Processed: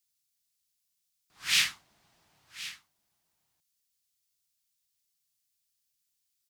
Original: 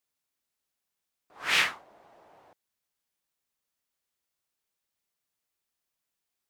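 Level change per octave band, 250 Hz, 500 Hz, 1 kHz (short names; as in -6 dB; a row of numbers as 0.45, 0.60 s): -7.0 dB, under -15 dB, -11.0 dB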